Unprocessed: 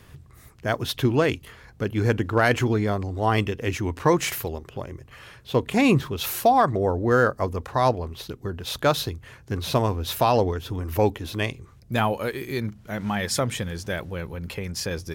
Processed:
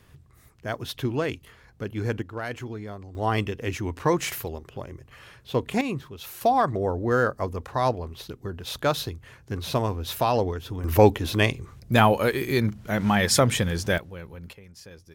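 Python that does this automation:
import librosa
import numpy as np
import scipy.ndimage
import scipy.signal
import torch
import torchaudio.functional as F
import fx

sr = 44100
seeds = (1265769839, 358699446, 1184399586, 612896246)

y = fx.gain(x, sr, db=fx.steps((0.0, -6.0), (2.22, -13.0), (3.15, -3.0), (5.81, -11.5), (6.41, -3.0), (10.84, 5.0), (13.98, -7.5), (14.53, -17.0)))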